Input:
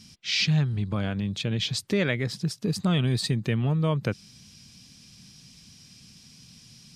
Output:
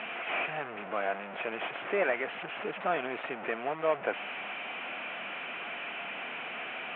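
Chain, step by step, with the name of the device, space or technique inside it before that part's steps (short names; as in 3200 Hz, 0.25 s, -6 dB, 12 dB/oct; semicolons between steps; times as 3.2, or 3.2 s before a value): digital answering machine (BPF 370–3300 Hz; delta modulation 16 kbps, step -32.5 dBFS; speaker cabinet 350–3000 Hz, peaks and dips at 700 Hz +9 dB, 1400 Hz +4 dB, 2500 Hz +4 dB)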